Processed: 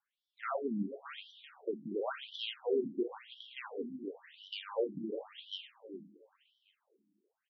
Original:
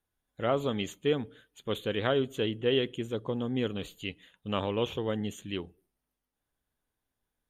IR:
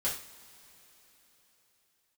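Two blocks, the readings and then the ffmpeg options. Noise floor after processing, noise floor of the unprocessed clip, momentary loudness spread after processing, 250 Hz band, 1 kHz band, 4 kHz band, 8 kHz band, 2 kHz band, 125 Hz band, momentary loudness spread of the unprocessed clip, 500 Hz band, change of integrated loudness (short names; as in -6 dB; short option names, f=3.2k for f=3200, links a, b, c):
under -85 dBFS, under -85 dBFS, 15 LU, -7.5 dB, -7.0 dB, -7.0 dB, under -20 dB, -8.5 dB, -17.5 dB, 11 LU, -7.0 dB, -8.0 dB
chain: -filter_complex "[0:a]acrossover=split=170|3000[a][b][c];[b]acompressor=threshold=-30dB:ratio=2[d];[a][d][c]amix=inputs=3:normalize=0,asoftclip=type=tanh:threshold=-26.5dB,aecho=1:1:381|762|1143:0.266|0.0718|0.0194,asplit=2[e][f];[1:a]atrim=start_sample=2205[g];[f][g]afir=irnorm=-1:irlink=0,volume=-8.5dB[h];[e][h]amix=inputs=2:normalize=0,afftfilt=real='re*between(b*sr/1024,230*pow(4200/230,0.5+0.5*sin(2*PI*0.95*pts/sr))/1.41,230*pow(4200/230,0.5+0.5*sin(2*PI*0.95*pts/sr))*1.41)':imag='im*between(b*sr/1024,230*pow(4200/230,0.5+0.5*sin(2*PI*0.95*pts/sr))/1.41,230*pow(4200/230,0.5+0.5*sin(2*PI*0.95*pts/sr))*1.41)':win_size=1024:overlap=0.75,volume=1dB"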